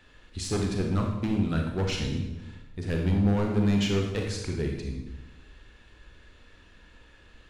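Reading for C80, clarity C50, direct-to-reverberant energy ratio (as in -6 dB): 6.0 dB, 3.5 dB, 1.0 dB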